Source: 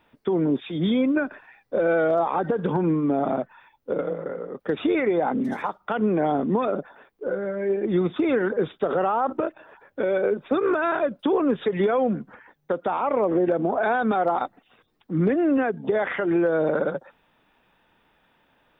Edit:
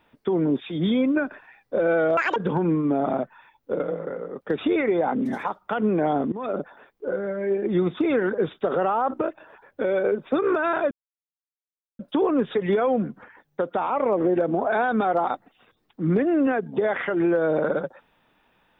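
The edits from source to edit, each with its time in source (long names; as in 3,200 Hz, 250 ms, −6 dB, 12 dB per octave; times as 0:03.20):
0:02.17–0:02.55: play speed 199%
0:06.51–0:06.77: fade in, from −20.5 dB
0:11.10: splice in silence 1.08 s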